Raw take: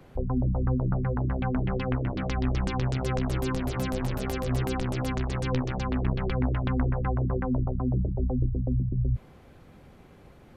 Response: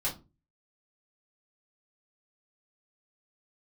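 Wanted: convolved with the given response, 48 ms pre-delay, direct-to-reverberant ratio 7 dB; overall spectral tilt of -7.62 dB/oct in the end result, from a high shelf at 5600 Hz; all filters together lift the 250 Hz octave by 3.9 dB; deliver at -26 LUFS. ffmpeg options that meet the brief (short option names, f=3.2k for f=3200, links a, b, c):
-filter_complex "[0:a]equalizer=f=250:t=o:g=4.5,highshelf=f=5.6k:g=-4,asplit=2[a][b];[1:a]atrim=start_sample=2205,adelay=48[c];[b][c]afir=irnorm=-1:irlink=0,volume=-12.5dB[d];[a][d]amix=inputs=2:normalize=0,volume=0.5dB"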